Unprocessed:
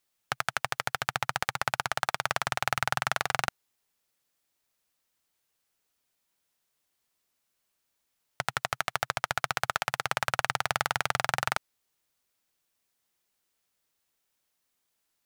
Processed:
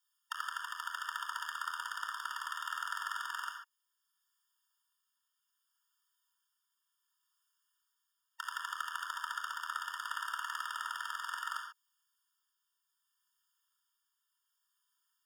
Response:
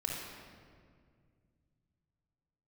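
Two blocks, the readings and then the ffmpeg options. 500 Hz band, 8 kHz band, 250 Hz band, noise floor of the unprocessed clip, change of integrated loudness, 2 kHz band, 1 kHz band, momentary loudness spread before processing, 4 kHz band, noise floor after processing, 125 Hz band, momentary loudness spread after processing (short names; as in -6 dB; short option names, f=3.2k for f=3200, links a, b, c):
under -40 dB, -11.0 dB, under -40 dB, -79 dBFS, -9.0 dB, -9.0 dB, -8.5 dB, 4 LU, -9.0 dB, -84 dBFS, under -40 dB, 3 LU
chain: -filter_complex "[0:a]tremolo=f=0.67:d=0.32,acrossover=split=910|1900|4300[a][b][c][d];[a]acompressor=threshold=-45dB:ratio=4[e];[b]acompressor=threshold=-37dB:ratio=4[f];[c]acompressor=threshold=-46dB:ratio=4[g];[d]acompressor=threshold=-45dB:ratio=4[h];[e][f][g][h]amix=inputs=4:normalize=0[i];[1:a]atrim=start_sample=2205,afade=t=out:st=0.2:d=0.01,atrim=end_sample=9261[j];[i][j]afir=irnorm=-1:irlink=0,afftfilt=real='re*eq(mod(floor(b*sr/1024/920),2),1)':imag='im*eq(mod(floor(b*sr/1024/920),2),1)':win_size=1024:overlap=0.75"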